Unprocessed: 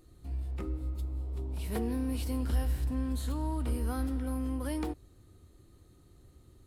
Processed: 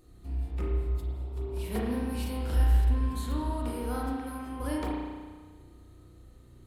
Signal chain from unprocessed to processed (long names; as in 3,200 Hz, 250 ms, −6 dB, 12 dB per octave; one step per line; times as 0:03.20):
0:03.50–0:04.60: high-pass filter 200 Hz 6 dB per octave
spring reverb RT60 1.5 s, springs 33 ms, chirp 25 ms, DRR −3 dB